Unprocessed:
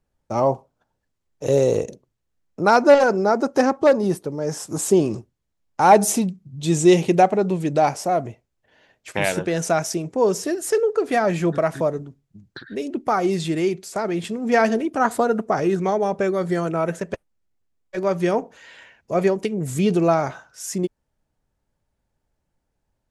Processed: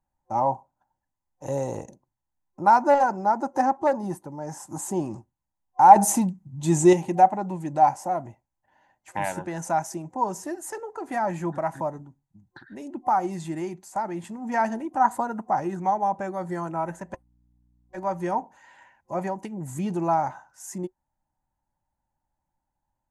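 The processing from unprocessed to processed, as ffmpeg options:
-filter_complex "[0:a]asettb=1/sr,asplit=3[s0][s1][s2];[s0]atrim=end=16.744[s3];[s1]atrim=start=16.74:end=18.37,asetpts=PTS-STARTPTS,afade=t=in:d=0.004:c=qsin,afade=t=out:st=1.626:d=0.004:c=qsin,aeval=exprs='val(0)+0.00178*(sin(2*PI*60*n/s)+sin(2*PI*2*60*n/s)/2+sin(2*PI*3*60*n/s)/3+sin(2*PI*4*60*n/s)/4+sin(2*PI*5*60*n/s)/5)':c=same[s4];[s2]atrim=start=18.366[s5];[s3][s4]acrossfade=d=0.004:c1=hsin:c2=qsin[s6];[s6][s5]acrossfade=d=0.004:c1=qsin:c2=hsin,asplit=3[s7][s8][s9];[s7]atrim=end=5.962[s10];[s8]atrim=start=5.958:end=6.932,asetpts=PTS-STARTPTS,volume=2.11[s11];[s9]atrim=start=6.928[s12];[s10][s11]acrossfade=d=0.004:c1=hsin:c2=hsin[s13];[s13][s12]acrossfade=d=0.004:c1=hsin:c2=hsin,superequalizer=7b=0.316:9b=3.55:12b=0.501:13b=0.355:14b=0.447,volume=0.398"

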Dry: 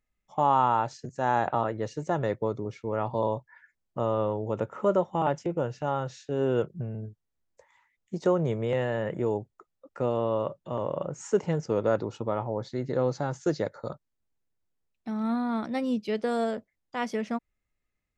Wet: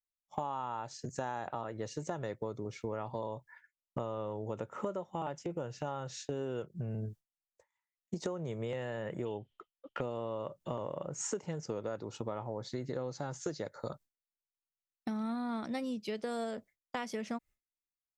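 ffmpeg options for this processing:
-filter_complex "[0:a]asettb=1/sr,asplit=3[s0][s1][s2];[s0]atrim=end=9.254[s3];[s1]atrim=start=9.25:end=10.01,asetpts=PTS-STARTPTS,afade=t=in:d=0.004:c=qsin,afade=t=out:st=0.756:d=0.004:c=qsin,lowpass=f=3100:t=q:w=14[s4];[s2]atrim=start=10.006[s5];[s3][s4]acrossfade=d=0.004:c1=hsin:c2=qsin[s6];[s6][s5]acrossfade=d=0.004:c1=qsin:c2=hsin,agate=range=0.0224:threshold=0.00562:ratio=3:detection=peak,highshelf=f=4100:g=9.5,acompressor=threshold=0.0112:ratio=10,volume=1.68"

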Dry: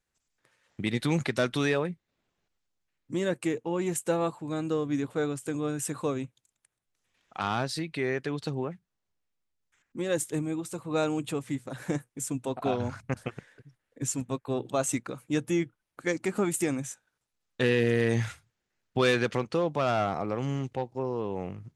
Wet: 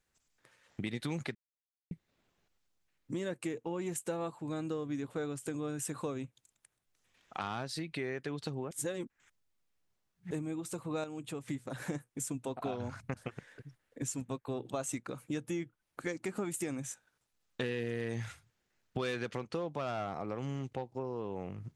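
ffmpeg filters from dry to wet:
-filter_complex "[0:a]asplit=7[s0][s1][s2][s3][s4][s5][s6];[s0]atrim=end=1.35,asetpts=PTS-STARTPTS,afade=t=out:st=1.346:d=0.004:c=hsin[s7];[s1]atrim=start=1.35:end=1.91,asetpts=PTS-STARTPTS,volume=0[s8];[s2]atrim=start=1.91:end=8.712,asetpts=PTS-STARTPTS,afade=t=in:d=0.004:c=hsin[s9];[s3]atrim=start=8.708:end=10.312,asetpts=PTS-STARTPTS,areverse[s10];[s4]atrim=start=10.308:end=11.042[s11];[s5]atrim=start=11.038:end=11.482,asetpts=PTS-STARTPTS,volume=0.422[s12];[s6]atrim=start=11.478[s13];[s7][s8][s9]concat=n=3:v=0:a=1[s14];[s14][s10]acrossfade=d=0.004:c1=hsin:c2=hsin[s15];[s15][s11]acrossfade=d=0.004:c1=hsin:c2=hsin[s16];[s16][s12]acrossfade=d=0.004:c1=hsin:c2=hsin[s17];[s17][s13]acrossfade=d=0.004:c1=hsin:c2=hsin,acompressor=threshold=0.01:ratio=3,volume=1.33"

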